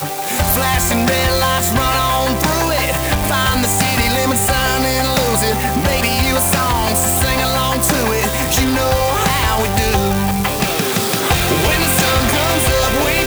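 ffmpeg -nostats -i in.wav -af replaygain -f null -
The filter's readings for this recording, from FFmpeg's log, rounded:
track_gain = -1.3 dB
track_peak = 0.452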